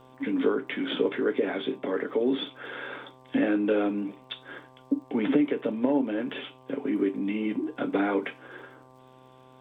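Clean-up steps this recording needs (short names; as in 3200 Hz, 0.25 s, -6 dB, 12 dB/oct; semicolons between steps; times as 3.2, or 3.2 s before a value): de-click; de-hum 129.3 Hz, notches 9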